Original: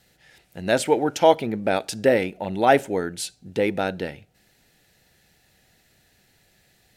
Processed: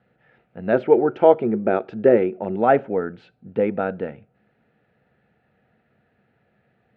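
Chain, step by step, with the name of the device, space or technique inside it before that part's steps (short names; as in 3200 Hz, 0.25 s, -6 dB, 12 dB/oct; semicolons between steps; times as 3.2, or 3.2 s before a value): 0.73–2.56 bell 370 Hz +14 dB 0.21 oct; bass cabinet (speaker cabinet 78–2300 Hz, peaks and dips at 130 Hz +5 dB, 220 Hz +9 dB, 470 Hz +7 dB, 680 Hz +4 dB, 1300 Hz +7 dB, 2000 Hz -4 dB); gain -3.5 dB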